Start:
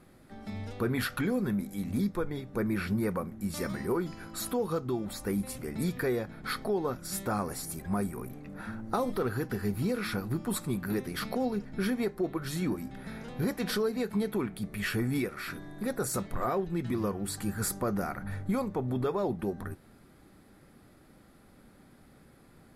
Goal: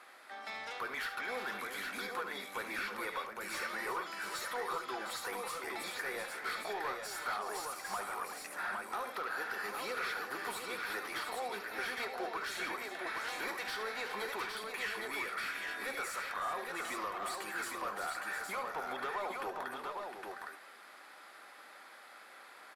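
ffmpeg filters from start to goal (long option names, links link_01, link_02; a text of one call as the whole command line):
ffmpeg -i in.wav -filter_complex "[0:a]highpass=900,acompressor=threshold=-43dB:ratio=6,asplit=2[link_01][link_02];[link_02]highpass=frequency=720:poles=1,volume=20dB,asoftclip=type=tanh:threshold=-26dB[link_03];[link_01][link_03]amix=inputs=2:normalize=0,lowpass=frequency=2500:poles=1,volume=-6dB,aecho=1:1:72|375|709|812:0.299|0.251|0.376|0.631,volume=-1.5dB" out.wav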